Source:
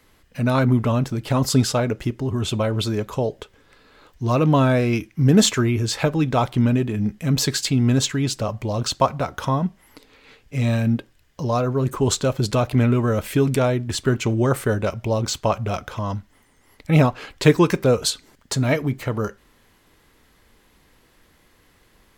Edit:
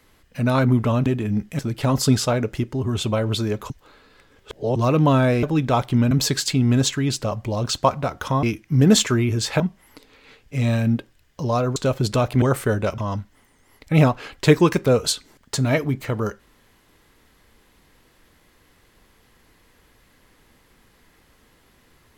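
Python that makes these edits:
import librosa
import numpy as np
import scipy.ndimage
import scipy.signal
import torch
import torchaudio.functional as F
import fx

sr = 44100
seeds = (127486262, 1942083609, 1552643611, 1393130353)

y = fx.edit(x, sr, fx.reverse_span(start_s=3.17, length_s=1.06),
    fx.move(start_s=4.9, length_s=1.17, to_s=9.6),
    fx.move(start_s=6.75, length_s=0.53, to_s=1.06),
    fx.cut(start_s=11.76, length_s=0.39),
    fx.cut(start_s=12.81, length_s=1.61),
    fx.cut(start_s=14.98, length_s=0.98), tone=tone)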